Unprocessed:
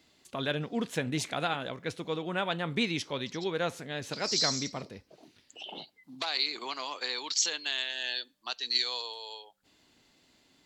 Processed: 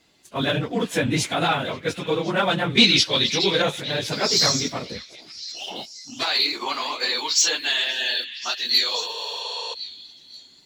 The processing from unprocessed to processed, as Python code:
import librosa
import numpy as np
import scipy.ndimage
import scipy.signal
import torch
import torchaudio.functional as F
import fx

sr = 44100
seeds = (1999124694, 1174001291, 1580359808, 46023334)

p1 = fx.phase_scramble(x, sr, seeds[0], window_ms=50)
p2 = fx.leveller(p1, sr, passes=1)
p3 = fx.peak_eq(p2, sr, hz=4400.0, db=14.5, octaves=1.1, at=(2.77, 3.62))
p4 = p3 + fx.echo_stepped(p3, sr, ms=530, hz=2600.0, octaves=0.7, feedback_pct=70, wet_db=-12.0, dry=0)
p5 = fx.spec_repair(p4, sr, seeds[1], start_s=9.12, length_s=0.59, low_hz=370.0, high_hz=11000.0, source='before')
p6 = fx.attack_slew(p5, sr, db_per_s=490.0)
y = F.gain(torch.from_numpy(p6), 6.0).numpy()